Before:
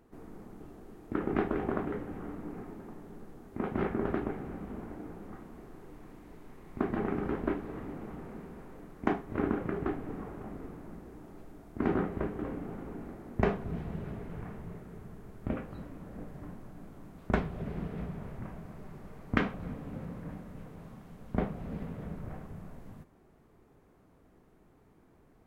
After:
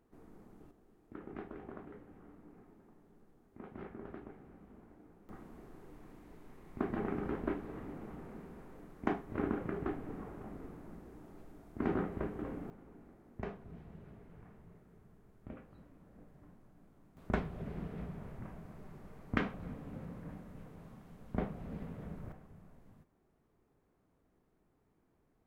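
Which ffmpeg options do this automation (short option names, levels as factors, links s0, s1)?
-af "asetnsamples=n=441:p=0,asendcmd='0.71 volume volume -16dB;5.29 volume volume -4.5dB;12.7 volume volume -14.5dB;17.17 volume volume -5dB;22.32 volume volume -12dB',volume=0.355"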